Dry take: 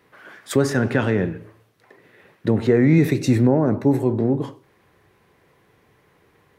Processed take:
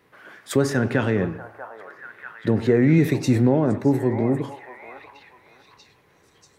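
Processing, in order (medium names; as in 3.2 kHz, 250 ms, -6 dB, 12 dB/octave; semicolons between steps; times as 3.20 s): repeats whose band climbs or falls 639 ms, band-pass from 900 Hz, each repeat 0.7 oct, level -6 dB; trim -1.5 dB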